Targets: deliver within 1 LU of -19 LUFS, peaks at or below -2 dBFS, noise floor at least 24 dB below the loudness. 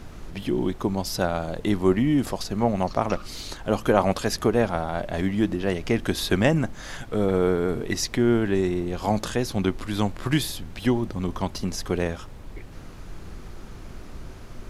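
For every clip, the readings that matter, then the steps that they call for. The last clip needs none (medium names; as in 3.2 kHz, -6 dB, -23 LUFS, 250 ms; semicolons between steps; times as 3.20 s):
noise floor -41 dBFS; noise floor target -49 dBFS; loudness -25.0 LUFS; peak level -3.5 dBFS; loudness target -19.0 LUFS
-> noise print and reduce 8 dB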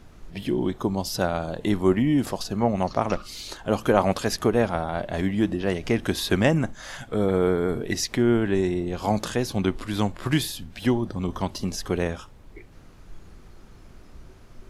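noise floor -48 dBFS; noise floor target -49 dBFS
-> noise print and reduce 6 dB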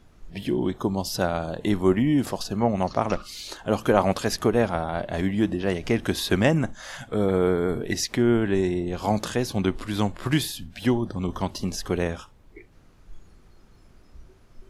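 noise floor -53 dBFS; loudness -25.0 LUFS; peak level -4.0 dBFS; loudness target -19.0 LUFS
-> trim +6 dB; peak limiter -2 dBFS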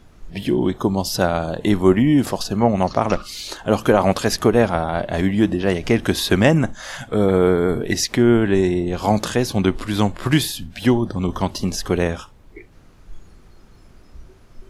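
loudness -19.0 LUFS; peak level -2.0 dBFS; noise floor -47 dBFS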